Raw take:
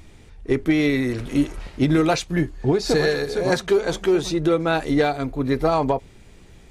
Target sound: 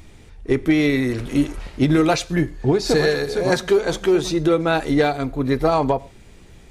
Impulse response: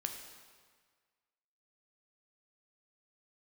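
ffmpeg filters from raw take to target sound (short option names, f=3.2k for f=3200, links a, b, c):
-filter_complex "[0:a]asplit=2[a][b];[1:a]atrim=start_sample=2205,atrim=end_sample=6615,highshelf=f=9.8k:g=9[c];[b][c]afir=irnorm=-1:irlink=0,volume=-12dB[d];[a][d]amix=inputs=2:normalize=0"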